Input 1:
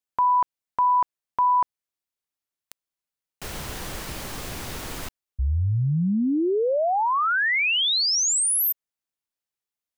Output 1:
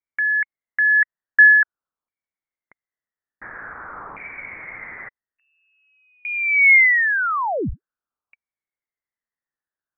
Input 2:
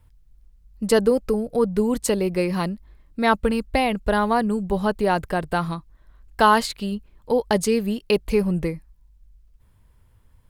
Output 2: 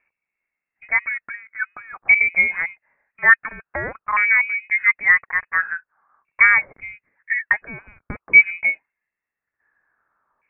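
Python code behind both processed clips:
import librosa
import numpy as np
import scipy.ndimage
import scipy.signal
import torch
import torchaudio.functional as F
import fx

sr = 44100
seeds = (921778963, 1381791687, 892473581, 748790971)

y = fx.filter_lfo_highpass(x, sr, shape='saw_up', hz=0.48, low_hz=390.0, high_hz=1600.0, q=5.1)
y = fx.freq_invert(y, sr, carrier_hz=2700)
y = F.gain(torch.from_numpy(y), -2.5).numpy()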